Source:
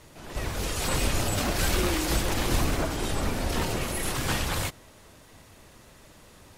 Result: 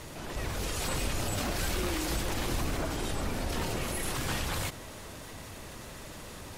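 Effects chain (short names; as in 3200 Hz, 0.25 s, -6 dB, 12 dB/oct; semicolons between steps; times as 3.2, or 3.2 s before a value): fast leveller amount 50%; gain -8 dB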